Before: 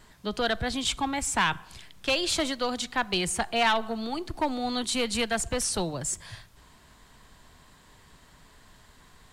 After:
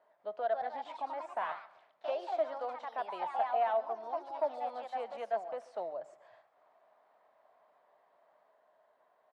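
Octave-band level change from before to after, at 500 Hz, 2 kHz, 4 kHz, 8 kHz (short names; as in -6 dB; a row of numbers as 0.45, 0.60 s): -3.5 dB, -17.5 dB, -27.0 dB, under -40 dB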